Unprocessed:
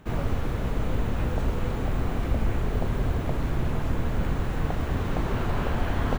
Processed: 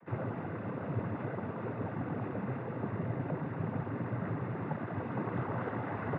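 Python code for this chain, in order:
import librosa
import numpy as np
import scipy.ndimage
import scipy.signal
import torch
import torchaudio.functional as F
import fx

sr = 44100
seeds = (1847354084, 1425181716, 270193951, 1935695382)

y = scipy.signal.sosfilt(scipy.signal.butter(4, 1900.0, 'lowpass', fs=sr, output='sos'), x)
y = fx.noise_vocoder(y, sr, seeds[0], bands=16)
y = y * librosa.db_to_amplitude(-5.0)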